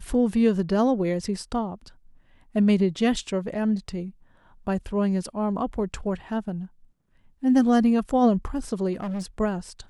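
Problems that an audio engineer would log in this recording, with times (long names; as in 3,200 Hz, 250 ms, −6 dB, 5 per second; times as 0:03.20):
0:08.93–0:09.26: clipping −27 dBFS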